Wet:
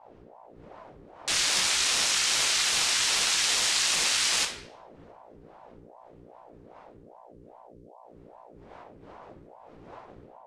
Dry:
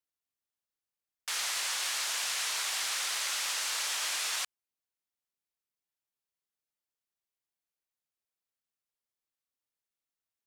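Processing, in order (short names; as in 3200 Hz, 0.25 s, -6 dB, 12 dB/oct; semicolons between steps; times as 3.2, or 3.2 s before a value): wind noise 140 Hz -42 dBFS; high shelf 3000 Hz -9 dB; AGC gain up to 5.5 dB; weighting filter ITU-R 468; hum 60 Hz, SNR 23 dB; shoebox room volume 190 m³, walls mixed, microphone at 0.71 m; ring modulator with a swept carrier 530 Hz, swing 60%, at 2.5 Hz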